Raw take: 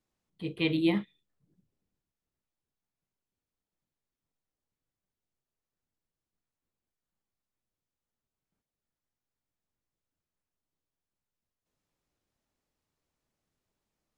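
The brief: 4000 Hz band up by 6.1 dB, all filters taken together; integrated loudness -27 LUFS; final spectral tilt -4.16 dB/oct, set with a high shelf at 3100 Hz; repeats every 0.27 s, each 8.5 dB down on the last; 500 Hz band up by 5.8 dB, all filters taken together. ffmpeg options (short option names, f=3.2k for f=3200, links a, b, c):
-af "equalizer=f=500:t=o:g=8.5,highshelf=f=3.1k:g=5.5,equalizer=f=4k:t=o:g=4,aecho=1:1:270|540|810|1080:0.376|0.143|0.0543|0.0206"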